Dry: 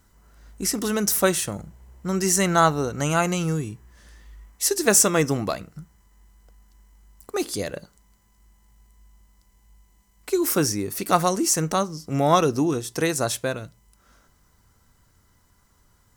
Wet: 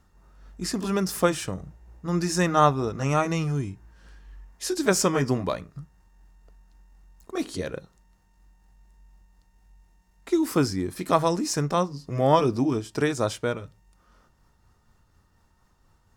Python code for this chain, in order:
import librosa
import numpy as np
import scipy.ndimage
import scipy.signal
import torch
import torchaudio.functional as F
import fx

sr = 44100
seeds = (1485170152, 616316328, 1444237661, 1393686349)

y = fx.pitch_heads(x, sr, semitones=-1.5)
y = fx.high_shelf(y, sr, hz=4900.0, db=-11.5)